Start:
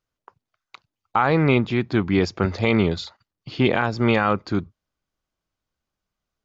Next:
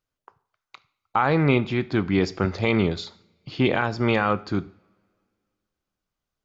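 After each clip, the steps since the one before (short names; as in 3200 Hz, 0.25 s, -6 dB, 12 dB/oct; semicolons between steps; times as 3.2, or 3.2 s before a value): two-slope reverb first 0.51 s, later 2.3 s, from -26 dB, DRR 14 dB; gain -2 dB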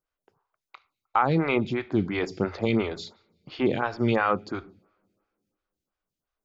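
photocell phaser 2.9 Hz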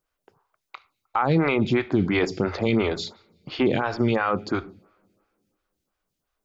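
limiter -18.5 dBFS, peak gain reduction 9.5 dB; gain +7 dB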